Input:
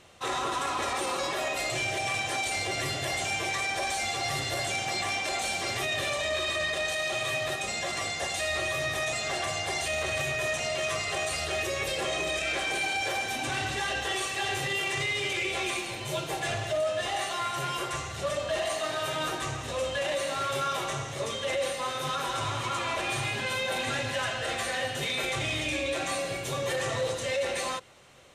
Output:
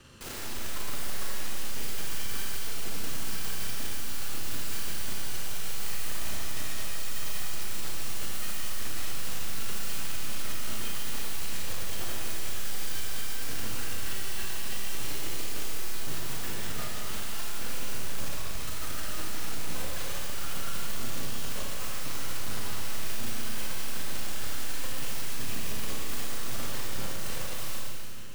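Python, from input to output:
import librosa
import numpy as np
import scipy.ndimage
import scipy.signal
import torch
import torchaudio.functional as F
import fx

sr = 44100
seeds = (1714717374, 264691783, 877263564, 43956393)

p1 = fx.lower_of_two(x, sr, delay_ms=0.68)
p2 = fx.low_shelf(p1, sr, hz=210.0, db=7.0)
p3 = fx.rider(p2, sr, range_db=10, speed_s=0.5)
p4 = p2 + F.gain(torch.from_numpy(p3), 2.0).numpy()
p5 = fx.rotary_switch(p4, sr, hz=0.8, then_hz=6.3, switch_at_s=12.21)
p6 = fx.tube_stage(p5, sr, drive_db=37.0, bias=0.8)
p7 = (np.mod(10.0 ** (38.0 / 20.0) * p6 + 1.0, 2.0) - 1.0) / 10.0 ** (38.0 / 20.0)
y = fx.rev_schroeder(p7, sr, rt60_s=2.4, comb_ms=28, drr_db=-3.5)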